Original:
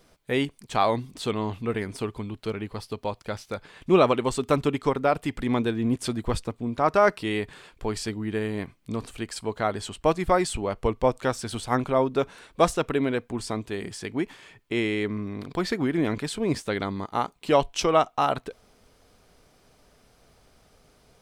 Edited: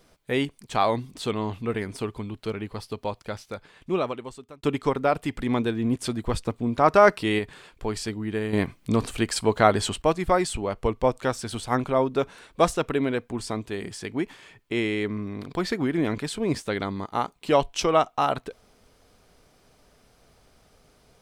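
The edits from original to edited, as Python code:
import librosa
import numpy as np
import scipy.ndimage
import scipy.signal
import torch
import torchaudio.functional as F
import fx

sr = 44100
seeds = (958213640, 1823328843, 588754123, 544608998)

y = fx.edit(x, sr, fx.fade_out_span(start_s=3.12, length_s=1.51),
    fx.clip_gain(start_s=6.46, length_s=0.93, db=3.5),
    fx.clip_gain(start_s=8.53, length_s=1.49, db=8.0), tone=tone)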